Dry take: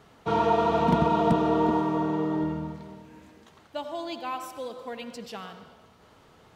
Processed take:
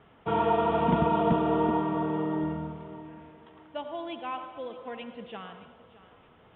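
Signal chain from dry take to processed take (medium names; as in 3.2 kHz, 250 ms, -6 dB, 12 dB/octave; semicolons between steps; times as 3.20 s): steep low-pass 3.5 kHz 96 dB/octave; on a send: thinning echo 618 ms, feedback 39%, high-pass 200 Hz, level -16.5 dB; on the sum: trim -2 dB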